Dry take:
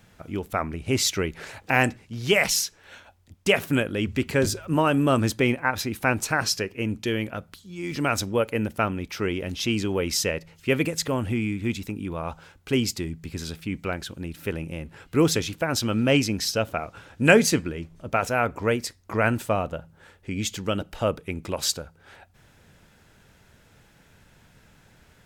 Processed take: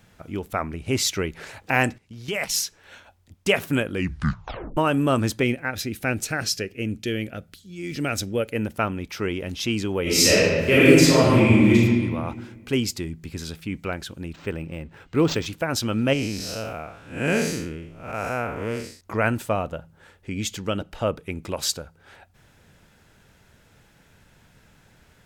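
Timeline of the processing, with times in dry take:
1.98–2.54 s: level held to a coarse grid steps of 13 dB
3.91 s: tape stop 0.86 s
5.43–8.56 s: peaking EQ 1 kHz -13.5 dB 0.63 oct
10.02–11.75 s: reverb throw, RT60 1.7 s, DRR -10.5 dB
14.33–15.46 s: decimation joined by straight lines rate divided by 4×
16.13–19.01 s: spectral blur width 188 ms
20.56–21.17 s: treble shelf 12 kHz -> 5.8 kHz -6.5 dB

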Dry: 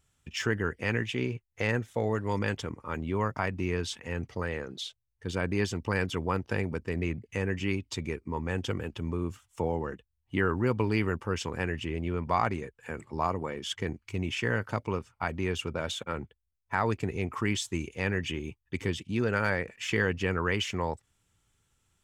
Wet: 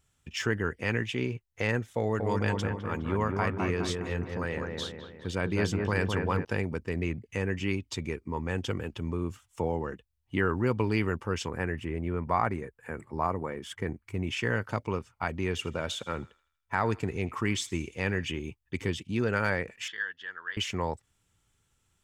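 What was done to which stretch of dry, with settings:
1.99–6.45 s: feedback echo behind a low-pass 207 ms, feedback 50%, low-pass 1.8 kHz, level -3.5 dB
11.48–14.27 s: high-order bell 4.3 kHz -8.5 dB
15.43–18.25 s: thinning echo 80 ms, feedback 50%, high-pass 870 Hz, level -19 dB
19.88–20.57 s: two resonant band-passes 2.4 kHz, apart 0.99 oct

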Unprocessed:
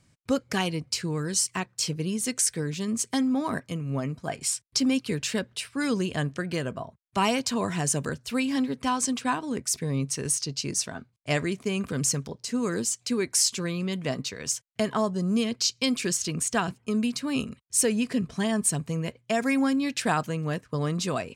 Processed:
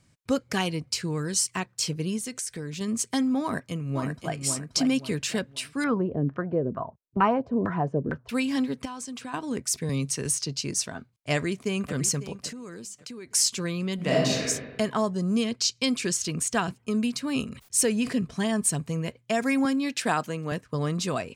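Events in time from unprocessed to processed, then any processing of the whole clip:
2.18–2.81 s: compression 3:1, threshold -32 dBFS
3.42–4.34 s: echo throw 530 ms, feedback 35%, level -5.5 dB
5.84–8.29 s: LFO low-pass saw down 2.2 Hz 270–1600 Hz
8.85–9.34 s: compression, threshold -34 dBFS
9.89–10.58 s: three bands compressed up and down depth 40%
11.33–11.94 s: echo throw 550 ms, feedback 30%, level -14 dB
12.51–13.34 s: compression 16:1, threshold -36 dBFS
13.95–14.43 s: reverb throw, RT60 1.2 s, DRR -6.5 dB
15.17–16.17 s: low-pass 12 kHz 24 dB/octave
17.45–18.24 s: decay stretcher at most 130 dB/s
19.65–20.52 s: high-pass 180 Hz

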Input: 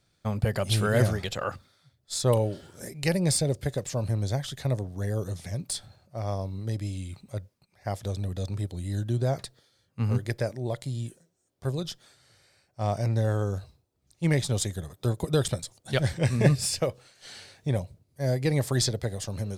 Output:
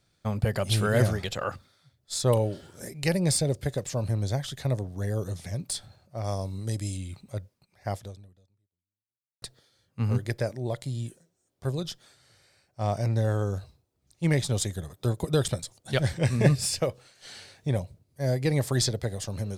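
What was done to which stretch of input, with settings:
6.24–6.97 s: peaking EQ 8.5 kHz +12.5 dB 1.2 oct
7.95–9.42 s: fade out exponential

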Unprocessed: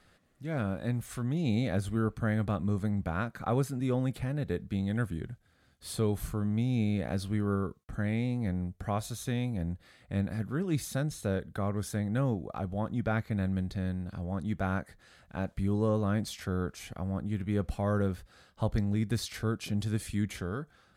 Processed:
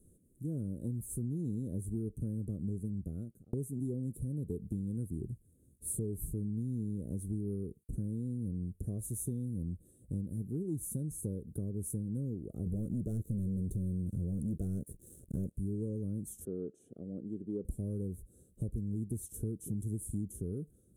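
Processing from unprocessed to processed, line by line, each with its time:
2.71–3.53 s: fade out
12.66–15.54 s: waveshaping leveller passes 3
16.45–17.65 s: band-pass 330–2900 Hz
whole clip: elliptic band-stop 400–9700 Hz, stop band 40 dB; peaking EQ 5.8 kHz +12 dB 1.8 oct; compression, threshold -37 dBFS; trim +3.5 dB

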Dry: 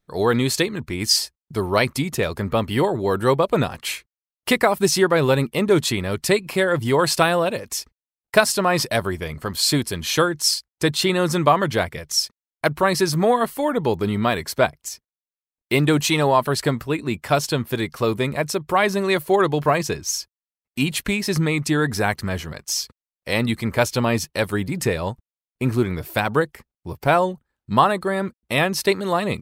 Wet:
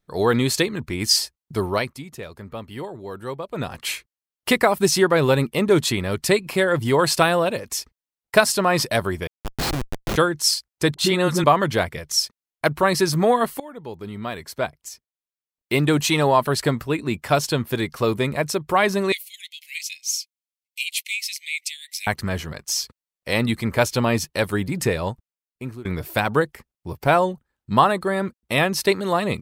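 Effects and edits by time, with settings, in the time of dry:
1.64–3.81 s: dip -13 dB, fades 0.28 s
9.27–10.16 s: Schmitt trigger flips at -17 dBFS
10.94–11.44 s: phase dispersion highs, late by 45 ms, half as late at 440 Hz
13.60–16.23 s: fade in linear, from -19.5 dB
19.12–22.07 s: steep high-pass 2.1 kHz 96 dB/octave
25.07–25.85 s: fade out, to -22.5 dB

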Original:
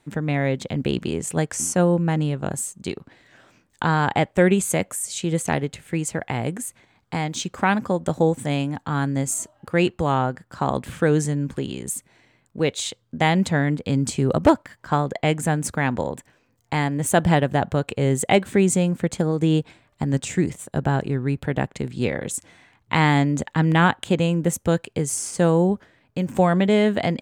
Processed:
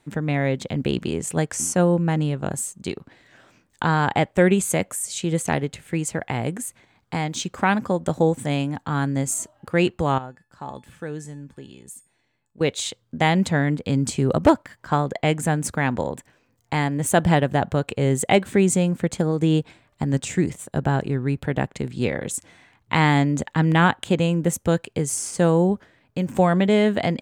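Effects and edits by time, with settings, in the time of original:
10.18–12.61 s: feedback comb 860 Hz, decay 0.3 s, mix 80%

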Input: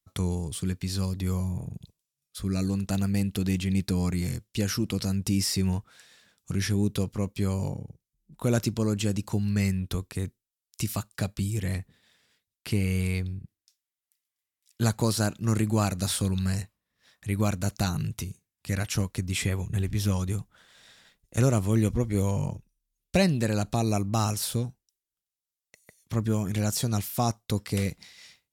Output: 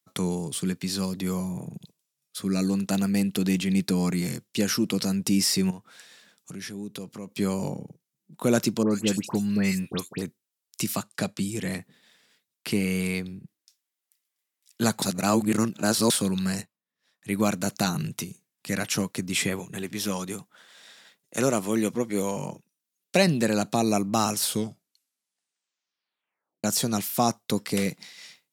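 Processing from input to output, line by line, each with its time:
5.70–7.32 s: compression 2.5:1, threshold -41 dBFS
8.83–10.22 s: phase dispersion highs, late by 82 ms, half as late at 1.9 kHz
10.95–11.72 s: low-pass 11 kHz
15.02–16.10 s: reverse
16.61–17.32 s: upward expansion, over -53 dBFS
19.59–23.27 s: bass shelf 170 Hz -11 dB
24.41 s: tape stop 2.23 s
whole clip: high-pass 160 Hz 24 dB/octave; trim +4.5 dB

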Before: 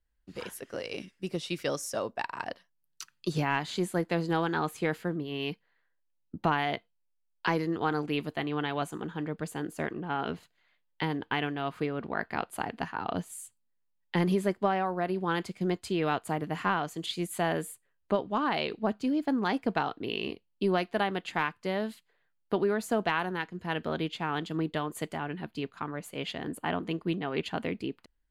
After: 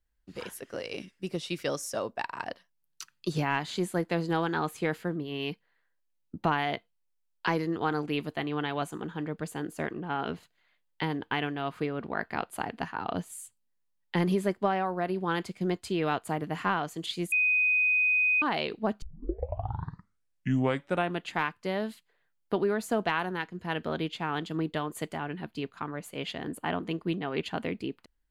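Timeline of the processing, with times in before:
17.32–18.42 s: bleep 2.5 kHz -21.5 dBFS
19.02 s: tape start 2.28 s

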